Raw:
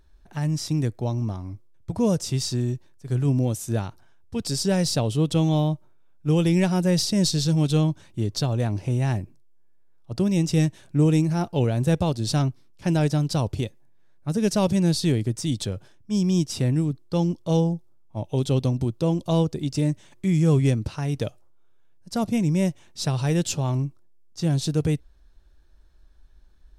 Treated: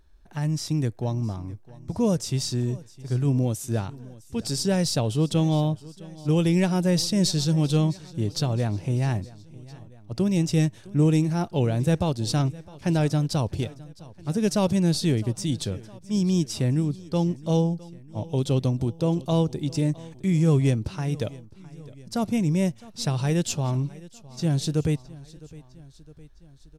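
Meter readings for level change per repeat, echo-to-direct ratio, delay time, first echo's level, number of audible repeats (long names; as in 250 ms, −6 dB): −4.5 dB, −19.0 dB, 660 ms, −20.5 dB, 3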